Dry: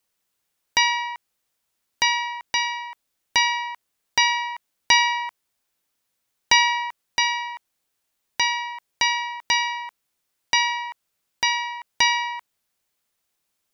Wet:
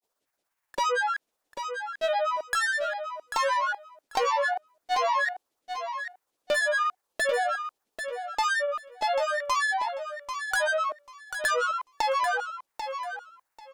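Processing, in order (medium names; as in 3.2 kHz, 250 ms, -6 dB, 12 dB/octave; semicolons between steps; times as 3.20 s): ten-band graphic EQ 125 Hz -10 dB, 500 Hz +10 dB, 1 kHz +9 dB, 2 kHz -7 dB; compression 12:1, threshold -17 dBFS, peak gain reduction 10 dB; overload inside the chain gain 15.5 dB; granulator 107 ms, grains 17 per s, spray 10 ms, pitch spread up and down by 12 st; feedback delay 791 ms, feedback 19%, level -8 dB; trim -3 dB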